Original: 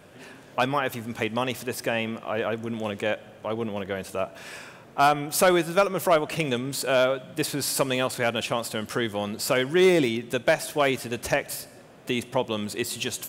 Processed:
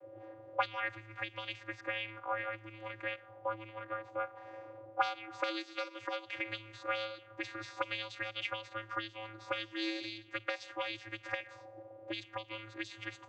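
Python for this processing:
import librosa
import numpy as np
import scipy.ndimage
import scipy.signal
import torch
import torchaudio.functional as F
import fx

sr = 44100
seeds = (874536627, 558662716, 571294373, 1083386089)

y = fx.vocoder(x, sr, bands=16, carrier='square', carrier_hz=109.0)
y = fx.auto_wah(y, sr, base_hz=520.0, top_hz=4100.0, q=2.6, full_db=-22.0, direction='up')
y = y * librosa.db_to_amplitude(7.5)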